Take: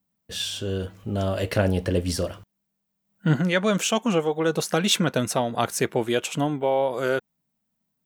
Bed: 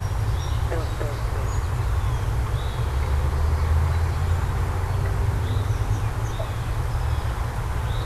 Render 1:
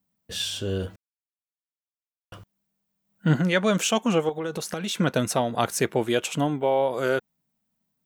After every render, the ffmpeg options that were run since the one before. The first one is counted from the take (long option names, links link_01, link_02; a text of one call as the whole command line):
ffmpeg -i in.wav -filter_complex "[0:a]asettb=1/sr,asplit=3[link_01][link_02][link_03];[link_01]atrim=end=4.294[link_04];[link_02]atrim=start=4.29:end=5,asetpts=PTS-STARTPTS,afade=type=in:duration=0.004:curve=qsin,afade=type=out:start_time=0.706:duration=0.004:curve=qsin,acompressor=threshold=-27dB:ratio=4:attack=3.2:release=140:knee=1:detection=peak[link_05];[link_03]atrim=start=4.996[link_06];[link_04][link_05]acrossfade=duration=0.004:curve1=hsin:curve2=qsin[link_07];[link_07][link_06]acrossfade=duration=0.004:curve1=qsin:curve2=hsin,asplit=3[link_08][link_09][link_10];[link_08]atrim=end=0.96,asetpts=PTS-STARTPTS,afade=type=out:start_time=0.956:duration=0.004:curve=hsin[link_11];[link_09]atrim=start=0.96:end=2.32,asetpts=PTS-STARTPTS,volume=0[link_12];[link_10]atrim=start=2.32,asetpts=PTS-STARTPTS,afade=type=in:duration=0.004:curve=hsin[link_13];[link_11][link_12][link_13]concat=n=3:v=0:a=1" out.wav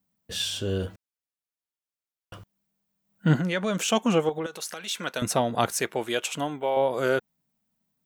ffmpeg -i in.wav -filter_complex "[0:a]asettb=1/sr,asplit=3[link_01][link_02][link_03];[link_01]atrim=end=3.374[link_04];[link_02]atrim=start=3.37:end=3.88,asetpts=PTS-STARTPTS,afade=type=in:duration=0.004:curve=qsin,afade=type=out:start_time=0.506:duration=0.004:curve=qsin,acompressor=threshold=-26dB:ratio=2:attack=3.2:release=140:knee=1:detection=peak[link_05];[link_03]atrim=start=3.876[link_06];[link_04][link_05]acrossfade=duration=0.004:curve1=hsin:curve2=qsin[link_07];[link_07][link_06]acrossfade=duration=0.004:curve1=qsin:curve2=hsin,asettb=1/sr,asplit=3[link_08][link_09][link_10];[link_08]atrim=end=4.464[link_11];[link_09]atrim=start=4.46:end=5.22,asetpts=PTS-STARTPTS,afade=type=in:duration=0.004:curve=qsin,afade=type=out:start_time=0.756:duration=0.004:curve=qsin,highpass=frequency=1300:poles=1[link_12];[link_10]atrim=start=5.216[link_13];[link_11][link_12]acrossfade=duration=0.004:curve1=hsin:curve2=qsin[link_14];[link_14][link_13]acrossfade=duration=0.004:curve1=qsin:curve2=hsin,asettb=1/sr,asplit=3[link_15][link_16][link_17];[link_15]atrim=end=5.724[link_18];[link_16]atrim=start=5.72:end=6.77,asetpts=PTS-STARTPTS,afade=type=in:duration=0.004:curve=qsin,afade=type=out:start_time=1.046:duration=0.004:curve=qsin,lowshelf=frequency=380:gain=-11.5[link_19];[link_17]atrim=start=6.766[link_20];[link_18][link_19]acrossfade=duration=0.004:curve1=hsin:curve2=qsin[link_21];[link_21][link_20]acrossfade=duration=0.004:curve1=qsin:curve2=hsin" out.wav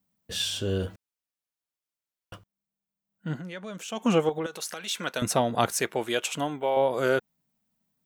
ffmpeg -i in.wav -filter_complex "[0:a]asplit=3[link_01][link_02][link_03];[link_01]atrim=end=2.56,asetpts=PTS-STARTPTS,afade=type=out:start_time=2.35:duration=0.21:curve=exp:silence=0.266073[link_04];[link_02]atrim=start=2.56:end=3.81,asetpts=PTS-STARTPTS,volume=-11.5dB[link_05];[link_03]atrim=start=3.81,asetpts=PTS-STARTPTS,afade=type=in:duration=0.21:curve=exp:silence=0.266073[link_06];[link_04][link_05][link_06]concat=n=3:v=0:a=1" out.wav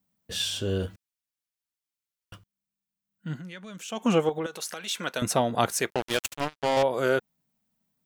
ffmpeg -i in.wav -filter_complex "[0:a]asettb=1/sr,asplit=3[link_01][link_02][link_03];[link_01]atrim=end=0.864[link_04];[link_02]atrim=start=0.86:end=3.9,asetpts=PTS-STARTPTS,afade=type=in:duration=0.004:curve=qsin,afade=type=out:start_time=3.036:duration=0.004:curve=qsin,equalizer=frequency=610:width=0.67:gain=-8.5[link_05];[link_03]atrim=start=3.896[link_06];[link_04][link_05]acrossfade=duration=0.004:curve1=hsin:curve2=qsin[link_07];[link_07][link_06]acrossfade=duration=0.004:curve1=qsin:curve2=hsin,asettb=1/sr,asplit=3[link_08][link_09][link_10];[link_08]atrim=end=5.904[link_11];[link_09]atrim=start=5.9:end=6.83,asetpts=PTS-STARTPTS,afade=type=in:duration=0.004:curve=qsin,afade=type=out:start_time=0.926:duration=0.004:curve=qsin,acrusher=bits=3:mix=0:aa=0.5[link_12];[link_10]atrim=start=6.826[link_13];[link_11][link_12]acrossfade=duration=0.004:curve1=hsin:curve2=qsin[link_14];[link_14][link_13]acrossfade=duration=0.004:curve1=qsin:curve2=hsin" out.wav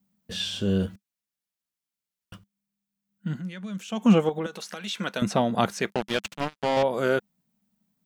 ffmpeg -i in.wav -filter_complex "[0:a]acrossover=split=5600[link_01][link_02];[link_02]acompressor=threshold=-48dB:ratio=4:attack=1:release=60[link_03];[link_01][link_03]amix=inputs=2:normalize=0,equalizer=frequency=200:width_type=o:width=0.4:gain=11.5" out.wav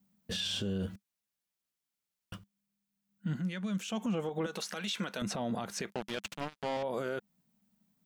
ffmpeg -i in.wav -af "acompressor=threshold=-26dB:ratio=3,alimiter=level_in=1.5dB:limit=-24dB:level=0:latency=1:release=47,volume=-1.5dB" out.wav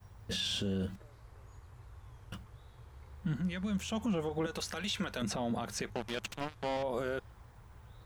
ffmpeg -i in.wav -i bed.wav -filter_complex "[1:a]volume=-29dB[link_01];[0:a][link_01]amix=inputs=2:normalize=0" out.wav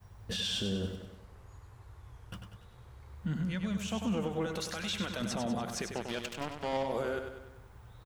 ffmpeg -i in.wav -af "aecho=1:1:97|194|291|388|485|582:0.447|0.232|0.121|0.0628|0.0327|0.017" out.wav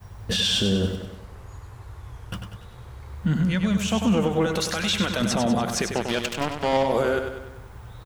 ffmpeg -i in.wav -af "volume=11.5dB" out.wav